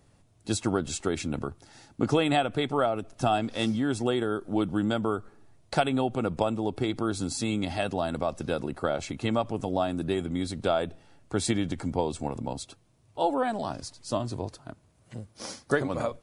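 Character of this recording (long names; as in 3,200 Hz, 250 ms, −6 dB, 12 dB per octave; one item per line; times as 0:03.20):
background noise floor −62 dBFS
spectral slope −5.5 dB per octave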